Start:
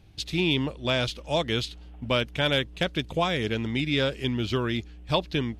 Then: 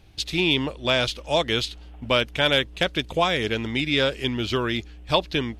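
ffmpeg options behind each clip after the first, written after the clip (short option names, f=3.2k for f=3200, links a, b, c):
-af "equalizer=f=140:t=o:w=2.2:g=-6.5,volume=5dB"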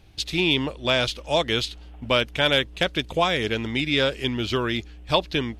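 -af anull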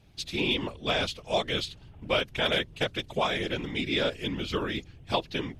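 -af "afftfilt=real='hypot(re,im)*cos(2*PI*random(0))':imag='hypot(re,im)*sin(2*PI*random(1))':win_size=512:overlap=0.75"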